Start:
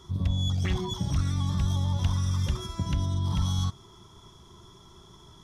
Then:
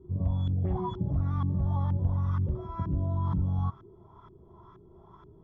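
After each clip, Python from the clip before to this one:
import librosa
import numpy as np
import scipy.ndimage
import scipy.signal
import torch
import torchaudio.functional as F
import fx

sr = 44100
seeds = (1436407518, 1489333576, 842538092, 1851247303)

y = fx.hpss(x, sr, part='harmonic', gain_db=5)
y = fx.filter_lfo_lowpass(y, sr, shape='saw_up', hz=2.1, low_hz=320.0, high_hz=1500.0, q=2.5)
y = F.gain(torch.from_numpy(y), -6.0).numpy()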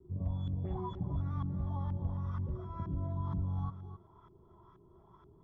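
y = fx.vibrato(x, sr, rate_hz=0.37, depth_cents=10.0)
y = y + 10.0 ** (-11.5 / 20.0) * np.pad(y, (int(265 * sr / 1000.0), 0))[:len(y)]
y = F.gain(torch.from_numpy(y), -7.0).numpy()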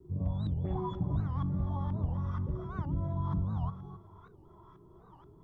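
y = fx.room_shoebox(x, sr, seeds[0], volume_m3=620.0, walls='furnished', distance_m=0.48)
y = fx.record_warp(y, sr, rpm=78.0, depth_cents=250.0)
y = F.gain(torch.from_numpy(y), 4.0).numpy()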